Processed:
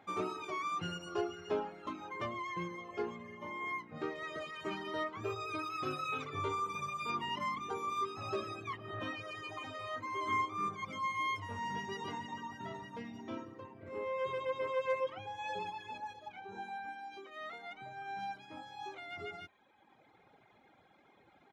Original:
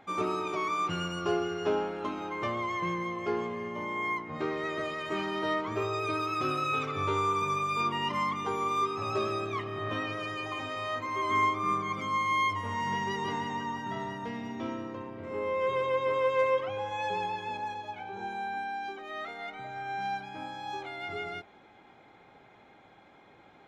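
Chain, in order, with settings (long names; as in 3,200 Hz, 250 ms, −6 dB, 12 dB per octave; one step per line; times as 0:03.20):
high-pass filter 41 Hz 24 dB per octave
reverb reduction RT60 1.3 s
tempo change 1.1×
level −5 dB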